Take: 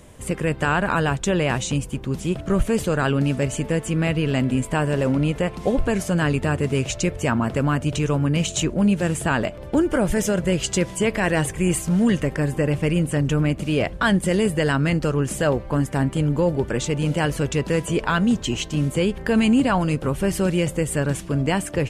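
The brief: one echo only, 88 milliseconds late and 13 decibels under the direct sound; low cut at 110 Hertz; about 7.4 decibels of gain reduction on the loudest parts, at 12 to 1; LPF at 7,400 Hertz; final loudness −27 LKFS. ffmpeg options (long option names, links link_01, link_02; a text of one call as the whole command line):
ffmpeg -i in.wav -af "highpass=110,lowpass=7400,acompressor=threshold=-22dB:ratio=12,aecho=1:1:88:0.224,volume=0.5dB" out.wav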